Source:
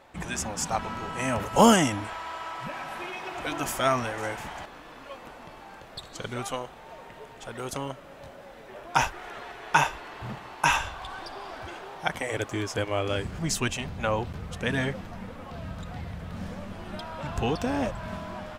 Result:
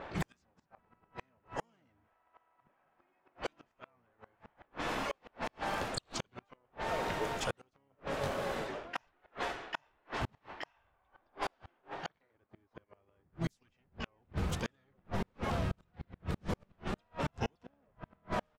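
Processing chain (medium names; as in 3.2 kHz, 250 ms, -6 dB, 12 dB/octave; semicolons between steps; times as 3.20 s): harmony voices -5 st -6 dB, +12 st -9 dB; reverse; compression 8:1, threshold -38 dBFS, peak gain reduction 25.5 dB; reverse; inverted gate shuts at -32 dBFS, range -41 dB; level-controlled noise filter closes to 1.7 kHz, open at -41.5 dBFS; trim +9.5 dB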